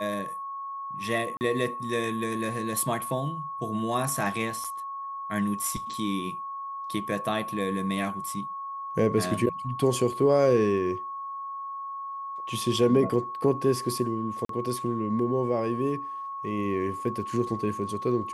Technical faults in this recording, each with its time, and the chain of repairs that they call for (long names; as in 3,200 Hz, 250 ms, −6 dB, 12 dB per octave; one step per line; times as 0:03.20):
whistle 1,100 Hz −33 dBFS
0:01.37–0:01.41: drop-out 39 ms
0:04.64–0:04.65: drop-out 5.6 ms
0:14.45–0:14.49: drop-out 43 ms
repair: notch filter 1,100 Hz, Q 30
repair the gap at 0:01.37, 39 ms
repair the gap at 0:04.64, 5.6 ms
repair the gap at 0:14.45, 43 ms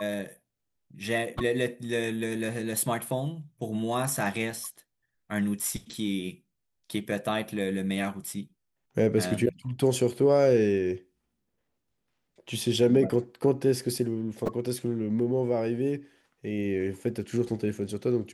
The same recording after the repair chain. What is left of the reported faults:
none of them is left